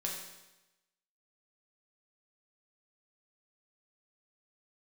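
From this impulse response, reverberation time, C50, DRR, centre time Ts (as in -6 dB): 1.0 s, 3.5 dB, -2.0 dB, 48 ms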